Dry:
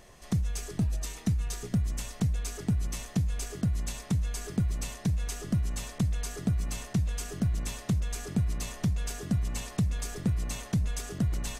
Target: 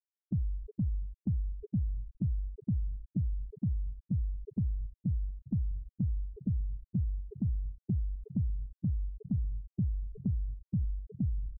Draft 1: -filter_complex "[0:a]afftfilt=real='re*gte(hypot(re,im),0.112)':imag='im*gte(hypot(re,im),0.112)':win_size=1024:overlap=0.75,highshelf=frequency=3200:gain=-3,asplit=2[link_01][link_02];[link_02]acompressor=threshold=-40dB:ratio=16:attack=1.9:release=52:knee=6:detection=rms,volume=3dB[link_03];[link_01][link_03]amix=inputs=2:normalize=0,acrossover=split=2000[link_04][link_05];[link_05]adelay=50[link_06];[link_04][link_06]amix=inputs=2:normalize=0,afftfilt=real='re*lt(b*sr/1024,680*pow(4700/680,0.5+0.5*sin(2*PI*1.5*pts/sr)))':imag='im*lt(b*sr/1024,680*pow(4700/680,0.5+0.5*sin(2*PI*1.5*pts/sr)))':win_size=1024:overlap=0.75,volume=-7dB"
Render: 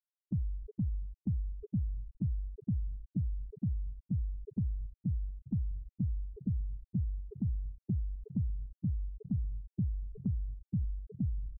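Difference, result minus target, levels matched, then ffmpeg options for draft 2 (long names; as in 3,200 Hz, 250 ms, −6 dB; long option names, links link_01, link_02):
downward compressor: peak gain reduction +7 dB
-filter_complex "[0:a]afftfilt=real='re*gte(hypot(re,im),0.112)':imag='im*gte(hypot(re,im),0.112)':win_size=1024:overlap=0.75,highshelf=frequency=3200:gain=-3,asplit=2[link_01][link_02];[link_02]acompressor=threshold=-32.5dB:ratio=16:attack=1.9:release=52:knee=6:detection=rms,volume=3dB[link_03];[link_01][link_03]amix=inputs=2:normalize=0,acrossover=split=2000[link_04][link_05];[link_05]adelay=50[link_06];[link_04][link_06]amix=inputs=2:normalize=0,afftfilt=real='re*lt(b*sr/1024,680*pow(4700/680,0.5+0.5*sin(2*PI*1.5*pts/sr)))':imag='im*lt(b*sr/1024,680*pow(4700/680,0.5+0.5*sin(2*PI*1.5*pts/sr)))':win_size=1024:overlap=0.75,volume=-7dB"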